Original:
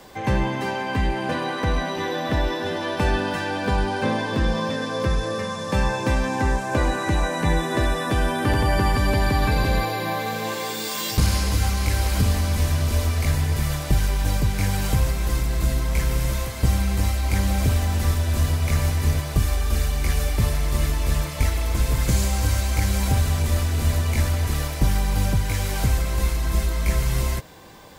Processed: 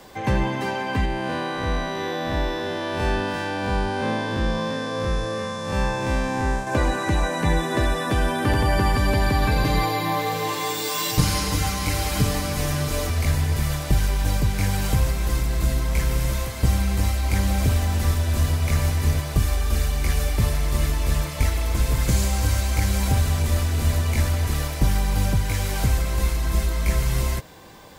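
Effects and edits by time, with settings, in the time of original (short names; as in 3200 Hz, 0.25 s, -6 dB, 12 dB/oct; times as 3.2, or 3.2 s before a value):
1.05–6.67 time blur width 0.117 s
9.64–13.1 comb 6.7 ms, depth 77%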